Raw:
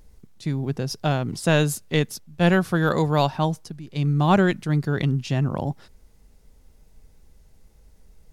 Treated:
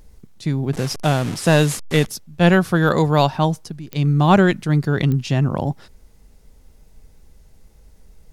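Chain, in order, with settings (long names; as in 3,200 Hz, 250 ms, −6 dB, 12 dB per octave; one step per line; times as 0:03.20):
0:00.73–0:02.07: linear delta modulator 64 kbit/s, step −29.5 dBFS
digital clicks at 0:03.93/0:05.12, −18 dBFS
level +4.5 dB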